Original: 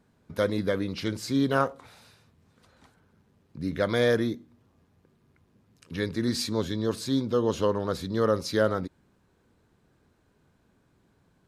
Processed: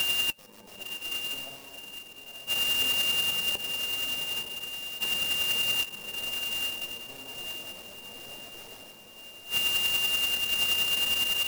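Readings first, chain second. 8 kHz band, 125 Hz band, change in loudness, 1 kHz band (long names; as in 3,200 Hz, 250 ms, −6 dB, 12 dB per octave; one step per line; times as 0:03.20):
+9.5 dB, −17.5 dB, +1.0 dB, −8.5 dB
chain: samples in bit-reversed order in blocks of 64 samples
in parallel at −2 dB: downward compressor, threshold −33 dBFS, peak gain reduction 14 dB
on the sum: parametric band 82 Hz −12 dB 0.59 octaves
automatic gain control gain up to 7 dB
on a send: echo with a time of its own for lows and highs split 630 Hz, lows 102 ms, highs 145 ms, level −4.5 dB
on the sum: wrap-around overflow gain 12 dB
steady tone 2,800 Hz −25 dBFS
gate with flip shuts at −22 dBFS, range −33 dB
flanger 0.23 Hz, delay 2.1 ms, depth 8.1 ms, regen +71%
parametric band 650 Hz +14.5 dB 0.95 octaves
feedback delay with all-pass diffusion 970 ms, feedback 45%, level −5 dB
converter with an unsteady clock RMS 0.026 ms
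level +5 dB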